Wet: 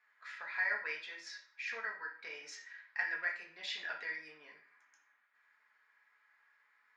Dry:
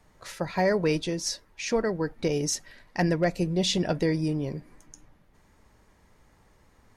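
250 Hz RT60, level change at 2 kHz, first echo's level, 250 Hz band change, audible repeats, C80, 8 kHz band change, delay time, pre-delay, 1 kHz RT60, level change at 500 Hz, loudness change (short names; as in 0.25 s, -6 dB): 0.50 s, 0.0 dB, none, -39.0 dB, none, 13.0 dB, -23.5 dB, none, 3 ms, 0.50 s, -27.0 dB, -12.0 dB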